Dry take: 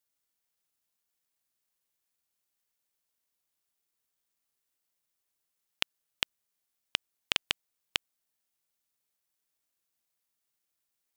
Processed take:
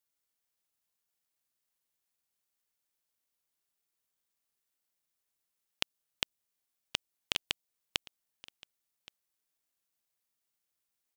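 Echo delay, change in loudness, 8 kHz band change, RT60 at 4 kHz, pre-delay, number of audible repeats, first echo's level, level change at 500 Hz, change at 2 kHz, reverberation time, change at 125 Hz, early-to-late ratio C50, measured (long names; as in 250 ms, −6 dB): 1,122 ms, −3.0 dB, −1.0 dB, no reverb audible, no reverb audible, 1, −21.5 dB, −1.0 dB, −4.5 dB, no reverb audible, 0.0 dB, no reverb audible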